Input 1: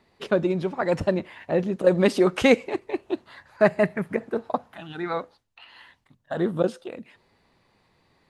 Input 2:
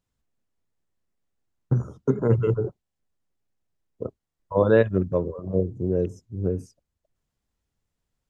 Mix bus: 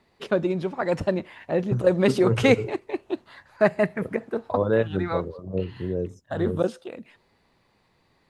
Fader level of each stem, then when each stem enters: -1.0, -4.0 dB; 0.00, 0.00 s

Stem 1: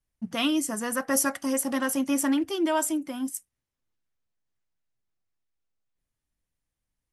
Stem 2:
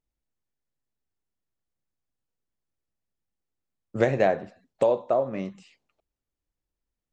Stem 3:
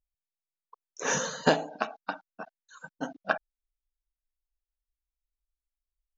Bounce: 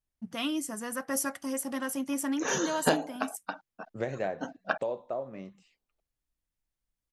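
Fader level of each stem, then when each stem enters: -6.5, -11.0, -2.5 dB; 0.00, 0.00, 1.40 s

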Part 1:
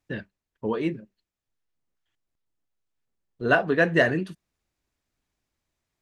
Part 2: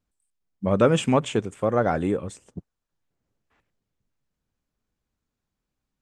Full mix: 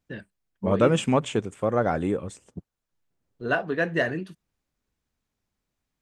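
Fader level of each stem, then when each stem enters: -4.5, -1.5 dB; 0.00, 0.00 s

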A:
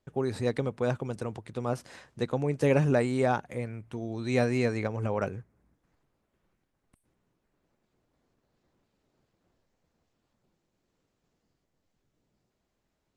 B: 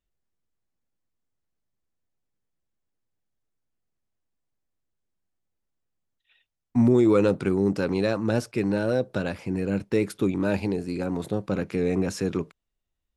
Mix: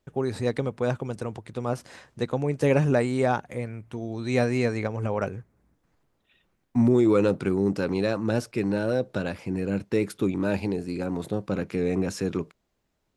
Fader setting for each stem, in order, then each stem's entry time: +2.5, -1.0 dB; 0.00, 0.00 s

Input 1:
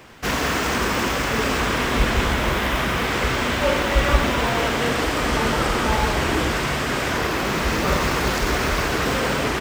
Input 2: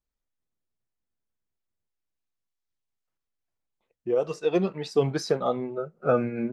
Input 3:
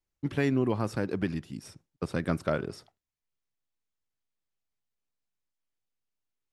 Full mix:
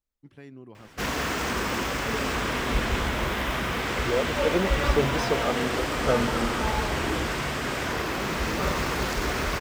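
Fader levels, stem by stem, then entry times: -6.0, -2.0, -19.0 dB; 0.75, 0.00, 0.00 s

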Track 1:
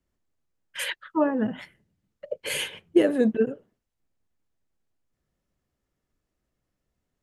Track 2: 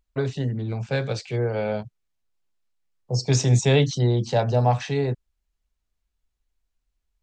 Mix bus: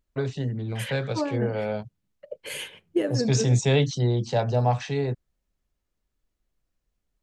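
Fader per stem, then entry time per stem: -5.5, -2.5 dB; 0.00, 0.00 s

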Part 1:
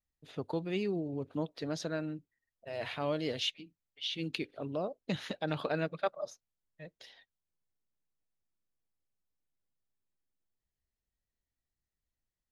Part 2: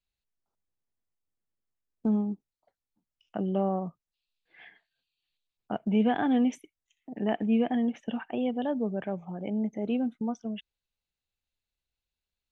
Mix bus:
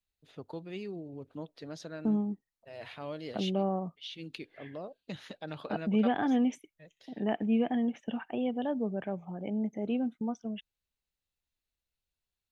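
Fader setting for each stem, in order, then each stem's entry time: -6.5, -2.5 dB; 0.00, 0.00 s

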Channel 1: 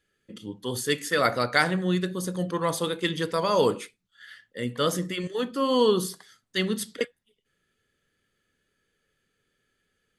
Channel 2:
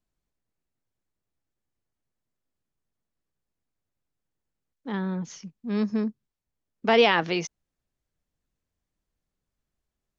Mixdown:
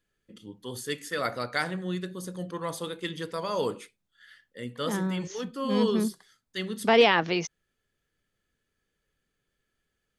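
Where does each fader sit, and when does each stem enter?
-7.0, -0.5 dB; 0.00, 0.00 s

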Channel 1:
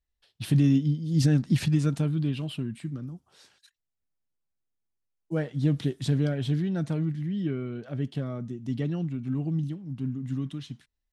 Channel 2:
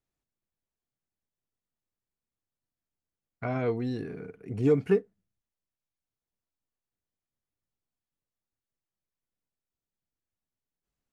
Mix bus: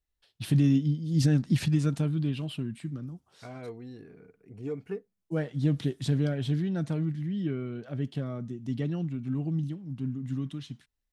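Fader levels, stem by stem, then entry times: -1.5, -12.0 dB; 0.00, 0.00 s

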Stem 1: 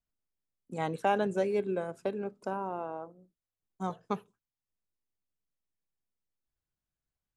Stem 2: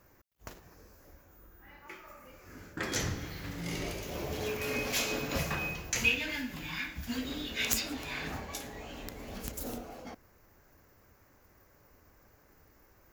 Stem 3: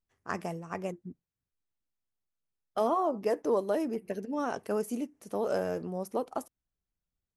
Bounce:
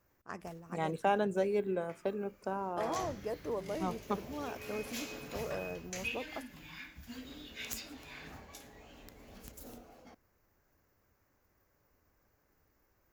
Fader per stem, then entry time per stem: -2.0, -11.0, -9.5 dB; 0.00, 0.00, 0.00 s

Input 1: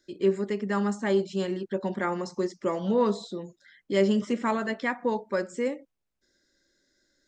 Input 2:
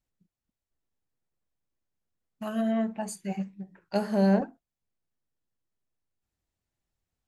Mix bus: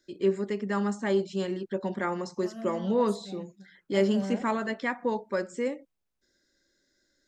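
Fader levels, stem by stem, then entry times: -1.5, -12.0 dB; 0.00, 0.00 s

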